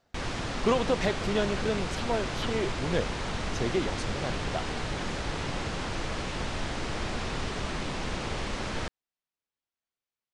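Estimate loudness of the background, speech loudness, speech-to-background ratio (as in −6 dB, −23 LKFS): −33.5 LKFS, −31.5 LKFS, 2.0 dB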